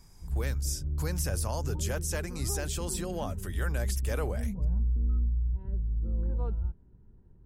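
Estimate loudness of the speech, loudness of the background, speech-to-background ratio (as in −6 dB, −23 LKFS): −35.5 LKFS, −33.5 LKFS, −2.0 dB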